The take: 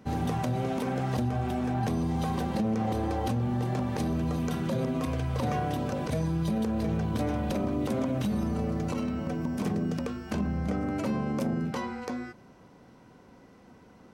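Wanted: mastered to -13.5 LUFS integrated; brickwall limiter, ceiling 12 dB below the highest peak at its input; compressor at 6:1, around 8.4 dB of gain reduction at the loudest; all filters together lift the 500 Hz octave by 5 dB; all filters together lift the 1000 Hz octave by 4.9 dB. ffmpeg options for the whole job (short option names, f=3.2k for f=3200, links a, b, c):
-af "equalizer=f=500:t=o:g=5,equalizer=f=1k:t=o:g=4.5,acompressor=threshold=-32dB:ratio=6,volume=27dB,alimiter=limit=-5.5dB:level=0:latency=1"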